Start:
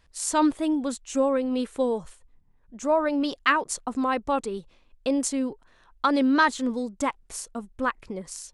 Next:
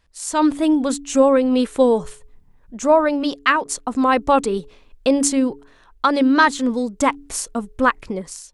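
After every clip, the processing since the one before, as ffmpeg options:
-af "bandreject=f=141.6:t=h:w=4,bandreject=f=283.2:t=h:w=4,bandreject=f=424.8:t=h:w=4,dynaudnorm=f=100:g=9:m=4.22,volume=0.891"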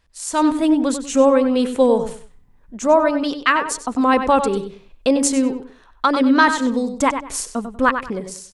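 -filter_complex "[0:a]asplit=2[s0][s1];[s1]adelay=96,lowpass=f=4300:p=1,volume=0.376,asplit=2[s2][s3];[s3]adelay=96,lowpass=f=4300:p=1,volume=0.26,asplit=2[s4][s5];[s5]adelay=96,lowpass=f=4300:p=1,volume=0.26[s6];[s0][s2][s4][s6]amix=inputs=4:normalize=0"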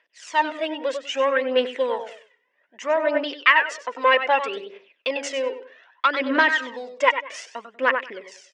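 -af "aphaser=in_gain=1:out_gain=1:delay=2.2:decay=0.6:speed=0.63:type=triangular,aeval=exprs='1.12*(cos(1*acos(clip(val(0)/1.12,-1,1)))-cos(1*PI/2))+0.0447*(cos(6*acos(clip(val(0)/1.12,-1,1)))-cos(6*PI/2))':c=same,highpass=f=440:w=0.5412,highpass=f=440:w=1.3066,equalizer=f=450:t=q:w=4:g=-4,equalizer=f=800:t=q:w=4:g=-8,equalizer=f=1200:t=q:w=4:g=-8,equalizer=f=1900:t=q:w=4:g=8,equalizer=f=2800:t=q:w=4:g=6,equalizer=f=4200:t=q:w=4:g=-10,lowpass=f=4700:w=0.5412,lowpass=f=4700:w=1.3066,volume=0.891"

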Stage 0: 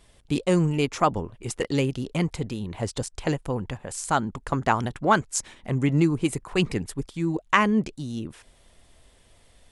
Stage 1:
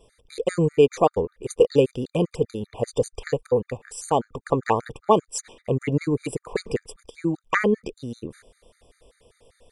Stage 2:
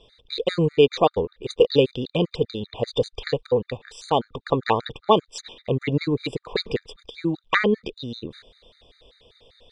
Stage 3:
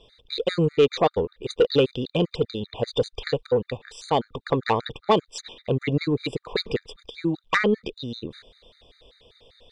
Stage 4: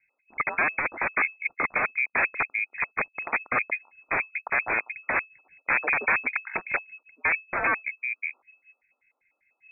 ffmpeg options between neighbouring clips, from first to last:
-af "equalizer=f=470:t=o:w=0.59:g=15,afftfilt=real='re*gt(sin(2*PI*5.1*pts/sr)*(1-2*mod(floor(b*sr/1024/1200),2)),0)':imag='im*gt(sin(2*PI*5.1*pts/sr)*(1-2*mod(floor(b*sr/1024/1200),2)),0)':win_size=1024:overlap=0.75"
-af "lowpass=f=3800:t=q:w=6.9"
-af "asoftclip=type=tanh:threshold=0.355"
-af "aeval=exprs='(mod(8.41*val(0)+1,2)-1)/8.41':c=same,afwtdn=0.02,lowpass=f=2200:t=q:w=0.5098,lowpass=f=2200:t=q:w=0.6013,lowpass=f=2200:t=q:w=0.9,lowpass=f=2200:t=q:w=2.563,afreqshift=-2600,volume=1.26"

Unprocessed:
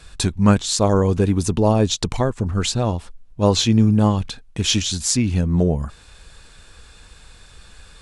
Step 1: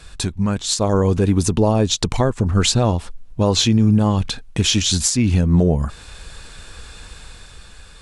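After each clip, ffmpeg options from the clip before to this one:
-af "alimiter=limit=0.2:level=0:latency=1:release=307,dynaudnorm=f=110:g=13:m=1.78,volume=1.33"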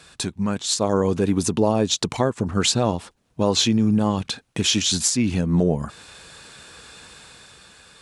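-af "highpass=150,volume=0.794"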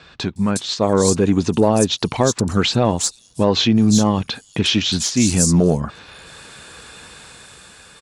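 -filter_complex "[0:a]acontrast=23,acrossover=split=5000[s0][s1];[s1]adelay=360[s2];[s0][s2]amix=inputs=2:normalize=0"

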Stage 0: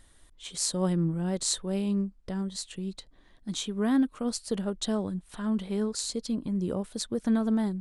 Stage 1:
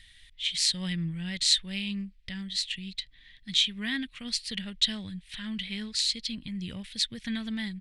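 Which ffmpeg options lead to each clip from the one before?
-af "firequalizer=gain_entry='entry(110,0);entry(380,-19);entry(1300,-10);entry(1900,13);entry(3400,14);entry(6600,-1);entry(12000,-5)':delay=0.05:min_phase=1"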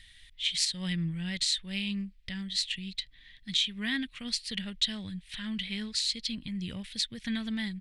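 -af "alimiter=limit=0.168:level=0:latency=1:release=248"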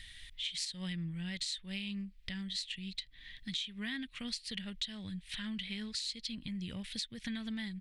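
-af "acompressor=threshold=0.00631:ratio=3,volume=1.5"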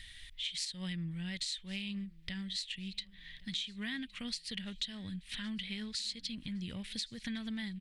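-af "aecho=1:1:1114|2228|3342:0.0708|0.0269|0.0102"

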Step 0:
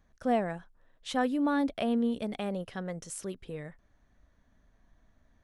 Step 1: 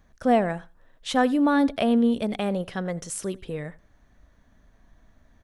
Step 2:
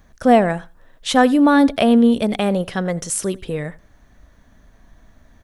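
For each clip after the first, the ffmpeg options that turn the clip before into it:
-af "aecho=1:1:85|170:0.0794|0.0119,volume=2.37"
-af "highshelf=f=6200:g=4,volume=2.37"

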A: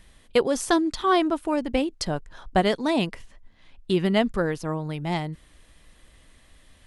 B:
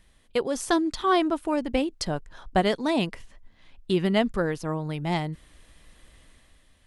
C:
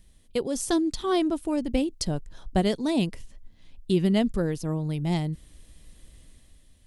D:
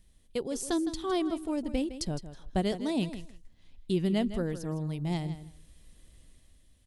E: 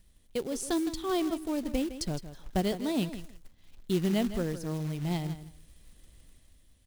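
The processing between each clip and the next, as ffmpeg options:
-af "dynaudnorm=f=100:g=11:m=2.24,volume=0.473"
-af "equalizer=f=1300:t=o:w=2.8:g=-13.5,volume=1.68"
-af "aecho=1:1:160|320:0.237|0.0403,volume=0.531"
-af "acrusher=bits=4:mode=log:mix=0:aa=0.000001"

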